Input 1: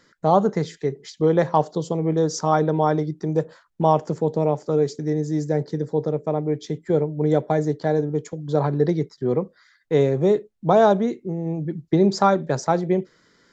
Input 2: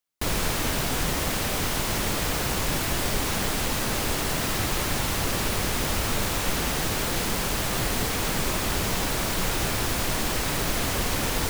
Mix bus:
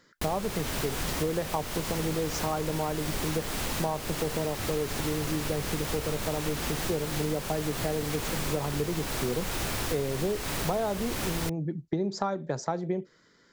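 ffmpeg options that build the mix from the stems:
-filter_complex "[0:a]volume=0.668[s0];[1:a]volume=0.668[s1];[s0][s1]amix=inputs=2:normalize=0,acompressor=threshold=0.0501:ratio=6"

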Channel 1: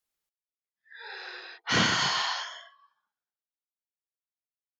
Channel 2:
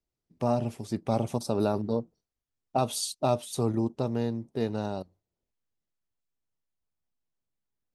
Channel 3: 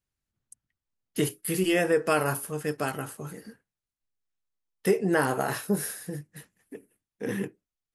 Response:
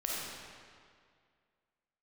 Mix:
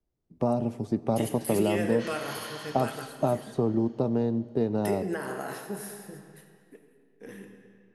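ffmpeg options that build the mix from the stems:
-filter_complex "[0:a]adelay=300,volume=0.119,asplit=3[s0][s1][s2];[s1]volume=0.473[s3];[s2]volume=0.562[s4];[1:a]tiltshelf=f=1400:g=8,acrossover=split=180|2900[s5][s6][s7];[s5]acompressor=threshold=0.0141:ratio=4[s8];[s6]acompressor=threshold=0.0708:ratio=4[s9];[s7]acompressor=threshold=0.00158:ratio=4[s10];[s8][s9][s10]amix=inputs=3:normalize=0,volume=0.944,asplit=3[s11][s12][s13];[s12]volume=0.0891[s14];[2:a]lowshelf=f=130:g=-8.5,dynaudnorm=f=110:g=17:m=3.35,volume=0.282,asplit=2[s15][s16];[s16]volume=0.168[s17];[s13]apad=whole_len=350351[s18];[s15][s18]sidechaingate=range=0.316:threshold=0.00447:ratio=16:detection=peak[s19];[s0][s19]amix=inputs=2:normalize=0,alimiter=level_in=1.26:limit=0.0631:level=0:latency=1:release=193,volume=0.794,volume=1[s20];[3:a]atrim=start_sample=2205[s21];[s3][s14][s17]amix=inputs=3:normalize=0[s22];[s22][s21]afir=irnorm=-1:irlink=0[s23];[s4]aecho=0:1:306|612|918|1224|1530|1836|2142|2448:1|0.55|0.303|0.166|0.0915|0.0503|0.0277|0.0152[s24];[s11][s20][s23][s24]amix=inputs=4:normalize=0"

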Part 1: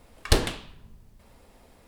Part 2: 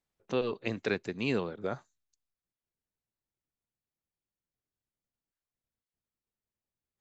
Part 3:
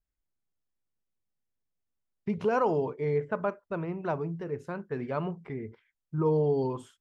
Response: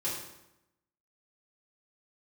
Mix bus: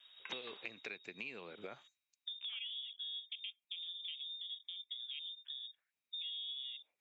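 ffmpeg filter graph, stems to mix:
-filter_complex "[0:a]volume=0.422[s0];[1:a]equalizer=f=2400:t=o:w=0.45:g=14.5,acompressor=threshold=0.02:ratio=4,volume=0.841[s1];[2:a]afwtdn=0.02,volume=1[s2];[s0][s2]amix=inputs=2:normalize=0,lowpass=f=3200:t=q:w=0.5098,lowpass=f=3200:t=q:w=0.6013,lowpass=f=3200:t=q:w=0.9,lowpass=f=3200:t=q:w=2.563,afreqshift=-3800,acompressor=threshold=0.0112:ratio=2.5,volume=1[s3];[s1][s3]amix=inputs=2:normalize=0,highpass=f=420:p=1,acompressor=threshold=0.00398:ratio=2"

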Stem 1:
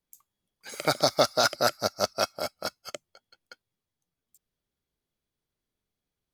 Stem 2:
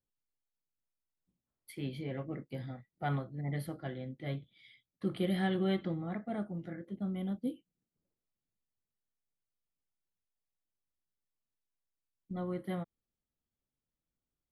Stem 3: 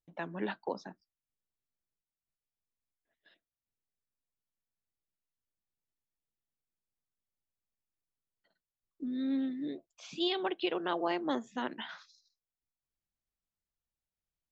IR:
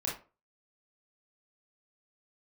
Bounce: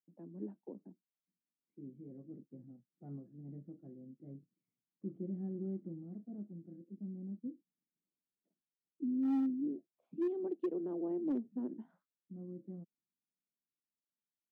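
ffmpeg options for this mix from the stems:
-filter_complex "[1:a]volume=0.224[s0];[2:a]volume=0.562[s1];[s0][s1]amix=inputs=2:normalize=0,asuperpass=centerf=250:order=4:qfactor=1.2,dynaudnorm=f=470:g=7:m=2,volume=28.2,asoftclip=hard,volume=0.0355"

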